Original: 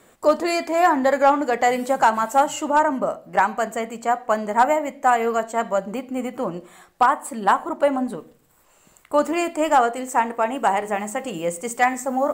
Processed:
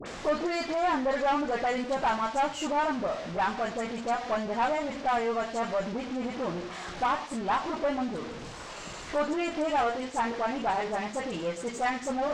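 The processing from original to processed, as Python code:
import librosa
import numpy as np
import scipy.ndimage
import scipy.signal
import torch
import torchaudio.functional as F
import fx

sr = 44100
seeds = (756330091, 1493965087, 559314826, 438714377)

y = x + 0.5 * 10.0 ** (-23.5 / 20.0) * np.sign(x)
y = scipy.signal.sosfilt(scipy.signal.butter(4, 6200.0, 'lowpass', fs=sr, output='sos'), y)
y = fx.doubler(y, sr, ms=17.0, db=-13)
y = fx.dispersion(y, sr, late='highs', ms=60.0, hz=1400.0)
y = fx.tube_stage(y, sr, drive_db=12.0, bias=0.4)
y = F.gain(torch.from_numpy(y), -8.0).numpy()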